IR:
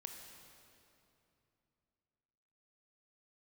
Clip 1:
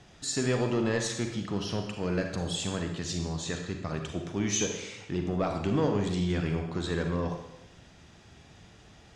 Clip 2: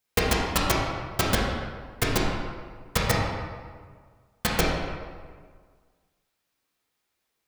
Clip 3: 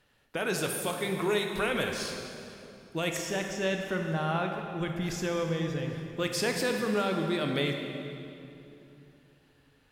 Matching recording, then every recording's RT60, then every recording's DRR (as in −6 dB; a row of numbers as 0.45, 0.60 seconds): 3; 0.90, 1.7, 2.9 seconds; 3.5, −5.0, 3.0 decibels